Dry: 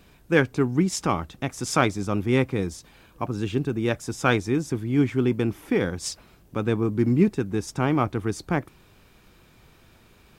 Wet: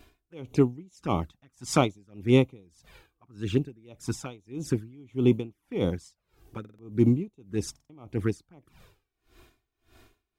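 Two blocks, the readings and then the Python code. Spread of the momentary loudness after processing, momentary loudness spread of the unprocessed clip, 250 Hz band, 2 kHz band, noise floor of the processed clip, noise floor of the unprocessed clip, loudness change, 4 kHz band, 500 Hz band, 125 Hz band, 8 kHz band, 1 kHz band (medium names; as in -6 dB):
16 LU, 10 LU, -4.0 dB, -12.0 dB, -83 dBFS, -56 dBFS, -3.5 dB, -5.0 dB, -4.0 dB, -3.5 dB, -7.0 dB, -7.5 dB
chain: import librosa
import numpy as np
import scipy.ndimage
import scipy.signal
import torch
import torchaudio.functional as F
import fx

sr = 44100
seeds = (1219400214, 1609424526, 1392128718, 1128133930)

y = fx.env_flanger(x, sr, rest_ms=3.0, full_db=-20.0)
y = fx.buffer_glitch(y, sr, at_s=(6.6, 7.71), block=2048, repeats=3)
y = y * 10.0 ** (-32 * (0.5 - 0.5 * np.cos(2.0 * np.pi * 1.7 * np.arange(len(y)) / sr)) / 20.0)
y = F.gain(torch.from_numpy(y), 3.0).numpy()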